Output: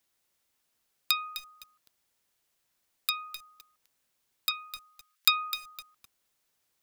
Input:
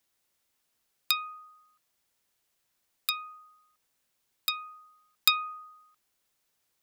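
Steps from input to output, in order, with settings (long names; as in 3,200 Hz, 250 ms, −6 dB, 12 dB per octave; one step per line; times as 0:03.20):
0:04.51–0:05.28: high-pass filter 1,300 Hz 24 dB per octave
feedback echo at a low word length 256 ms, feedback 35%, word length 6 bits, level −11 dB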